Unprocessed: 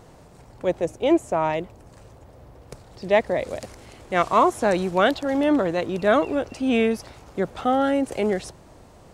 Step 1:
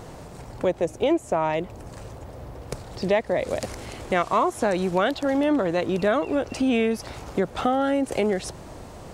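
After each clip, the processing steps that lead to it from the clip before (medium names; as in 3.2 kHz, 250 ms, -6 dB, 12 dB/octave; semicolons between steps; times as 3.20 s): compression 3:1, threshold -30 dBFS, peak gain reduction 13 dB; trim +8 dB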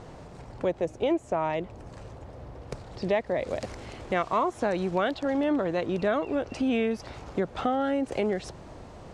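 distance through air 71 m; trim -4 dB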